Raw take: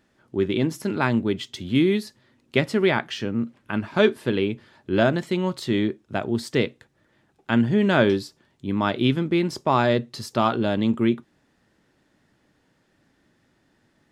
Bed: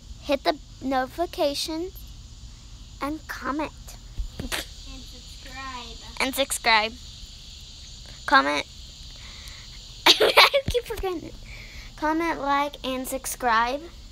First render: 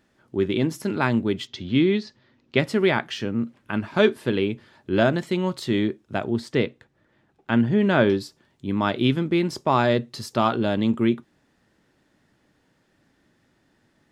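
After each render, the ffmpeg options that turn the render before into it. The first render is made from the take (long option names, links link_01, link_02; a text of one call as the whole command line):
ffmpeg -i in.wav -filter_complex "[0:a]asettb=1/sr,asplit=3[link_01][link_02][link_03];[link_01]atrim=end=1.474[link_04];[link_02]atrim=start=1.47:end=2.6,asetpts=PTS-STARTPTS,afade=type=in:duration=0.004:curve=qsin,afade=type=out:start_time=1.126:duration=0.004:curve=qsin,lowpass=frequency=5600:width=0.5412,lowpass=frequency=5600:width=1.3066[link_05];[link_03]atrim=start=2.596[link_06];[link_04][link_05]acrossfade=duration=0.004:curve1=hsin:curve2=qsin[link_07];[link_07][link_06]acrossfade=duration=0.004:curve1=qsin:curve2=hsin,asettb=1/sr,asplit=3[link_08][link_09][link_10];[link_08]atrim=end=6.304[link_11];[link_09]atrim=start=6.3:end=8.21,asetpts=PTS-STARTPTS,afade=type=in:duration=0.004:curve=qsin,afade=type=out:start_time=1.906:duration=0.004:curve=qsin,lowpass=frequency=3400:poles=1[link_12];[link_10]atrim=start=8.206[link_13];[link_11][link_12]acrossfade=duration=0.004:curve1=hsin:curve2=qsin[link_14];[link_14][link_13]acrossfade=duration=0.004:curve1=qsin:curve2=hsin" out.wav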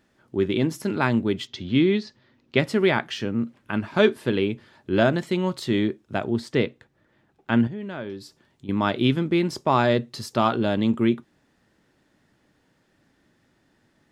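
ffmpeg -i in.wav -filter_complex "[0:a]asettb=1/sr,asplit=3[link_01][link_02][link_03];[link_01]atrim=end=7.674[link_04];[link_02]atrim=start=7.67:end=8.69,asetpts=PTS-STARTPTS,afade=type=in:duration=0.004:curve=qsin,afade=type=out:start_time=1.016:duration=0.004:curve=qsin,acompressor=threshold=-42dB:ratio=2:attack=3.2:release=140:knee=1:detection=peak[link_05];[link_03]atrim=start=8.686[link_06];[link_04][link_05]acrossfade=duration=0.004:curve1=hsin:curve2=qsin[link_07];[link_07][link_06]acrossfade=duration=0.004:curve1=qsin:curve2=hsin" out.wav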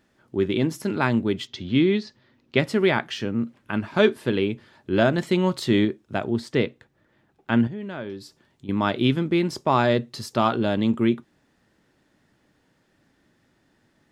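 ffmpeg -i in.wav -filter_complex "[0:a]asplit=3[link_01][link_02][link_03];[link_01]atrim=end=5.182[link_04];[link_02]atrim=start=5.178:end=5.852,asetpts=PTS-STARTPTS,volume=3dB[link_05];[link_03]atrim=start=5.848[link_06];[link_04][link_05]acrossfade=duration=0.004:curve1=hsin:curve2=hsin[link_07];[link_07][link_06]acrossfade=duration=0.004:curve1=hsin:curve2=hsin" out.wav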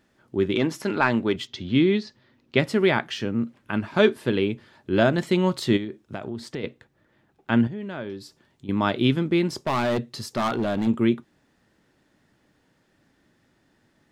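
ffmpeg -i in.wav -filter_complex "[0:a]asettb=1/sr,asplit=3[link_01][link_02][link_03];[link_01]atrim=end=0.554[link_04];[link_02]atrim=start=0.55:end=1.36,asetpts=PTS-STARTPTS,afade=type=in:duration=0.004:curve=qsin,afade=type=out:start_time=0.806:duration=0.004:curve=qsin,asplit=2[link_05][link_06];[link_06]highpass=frequency=720:poles=1,volume=11dB,asoftclip=type=tanh:threshold=-6dB[link_07];[link_05][link_07]amix=inputs=2:normalize=0,lowpass=frequency=3200:poles=1,volume=-6dB[link_08];[link_03]atrim=start=1.356[link_09];[link_04][link_08]acrossfade=duration=0.004:curve1=hsin:curve2=qsin[link_10];[link_10][link_09]acrossfade=duration=0.004:curve1=qsin:curve2=hsin,asplit=3[link_11][link_12][link_13];[link_11]afade=type=out:start_time=5.76:duration=0.02[link_14];[link_12]acompressor=threshold=-28dB:ratio=5:attack=3.2:release=140:knee=1:detection=peak,afade=type=in:start_time=5.76:duration=0.02,afade=type=out:start_time=6.63:duration=0.02[link_15];[link_13]afade=type=in:start_time=6.63:duration=0.02[link_16];[link_14][link_15][link_16]amix=inputs=3:normalize=0,asettb=1/sr,asplit=3[link_17][link_18][link_19];[link_17]atrim=end=9.484[link_20];[link_18]atrim=start=9.48:end=10.87,asetpts=PTS-STARTPTS,afade=type=in:duration=0.004:curve=qsin,afade=type=out:start_time=1.386:duration=0.004:curve=qsin,asoftclip=type=hard:threshold=-20dB[link_21];[link_19]atrim=start=10.866[link_22];[link_20][link_21]acrossfade=duration=0.004:curve1=hsin:curve2=qsin[link_23];[link_23][link_22]acrossfade=duration=0.004:curve1=qsin:curve2=hsin" out.wav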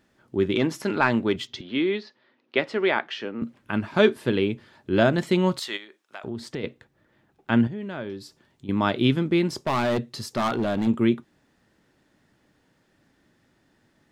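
ffmpeg -i in.wav -filter_complex "[0:a]asettb=1/sr,asplit=3[link_01][link_02][link_03];[link_01]atrim=end=1.614[link_04];[link_02]atrim=start=1.61:end=3.42,asetpts=PTS-STARTPTS,afade=type=in:duration=0.004:curve=qsin,afade=type=out:start_time=1.806:duration=0.004:curve=qsin,highpass=370,lowpass=3800[link_05];[link_03]atrim=start=3.416[link_06];[link_04][link_05]acrossfade=duration=0.004:curve1=hsin:curve2=qsin[link_07];[link_07][link_06]acrossfade=duration=0.004:curve1=qsin:curve2=hsin,asettb=1/sr,asplit=3[link_08][link_09][link_10];[link_08]atrim=end=5.594[link_11];[link_09]atrim=start=5.59:end=6.24,asetpts=PTS-STARTPTS,afade=type=in:duration=0.004:curve=qsin,afade=type=out:start_time=0.646:duration=0.004:curve=qsin,highpass=920[link_12];[link_10]atrim=start=6.236[link_13];[link_11][link_12]acrossfade=duration=0.004:curve1=hsin:curve2=qsin[link_14];[link_14][link_13]acrossfade=duration=0.004:curve1=qsin:curve2=hsin" out.wav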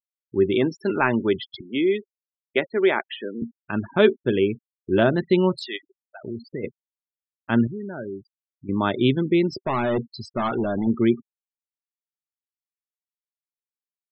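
ffmpeg -i in.wav -af "afftfilt=real='re*gte(hypot(re,im),0.0355)':imag='im*gte(hypot(re,im),0.0355)':win_size=1024:overlap=0.75,adynamicequalizer=threshold=0.0141:dfrequency=380:dqfactor=4.6:tfrequency=380:tqfactor=4.6:attack=5:release=100:ratio=0.375:range=2.5:mode=boostabove:tftype=bell" out.wav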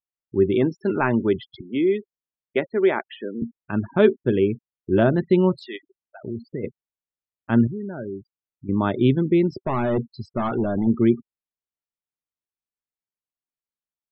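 ffmpeg -i in.wav -af "lowpass=frequency=1600:poles=1,lowshelf=frequency=180:gain=5.5" out.wav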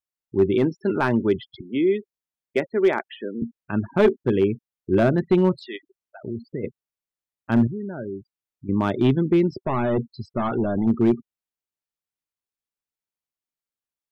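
ffmpeg -i in.wav -af "aeval=exprs='clip(val(0),-1,0.266)':channel_layout=same" out.wav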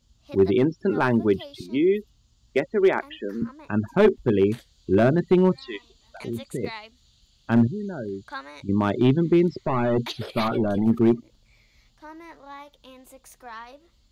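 ffmpeg -i in.wav -i bed.wav -filter_complex "[1:a]volume=-18.5dB[link_01];[0:a][link_01]amix=inputs=2:normalize=0" out.wav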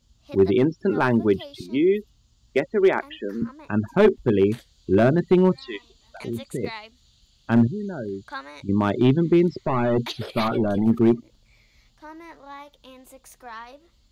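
ffmpeg -i in.wav -af "volume=1dB" out.wav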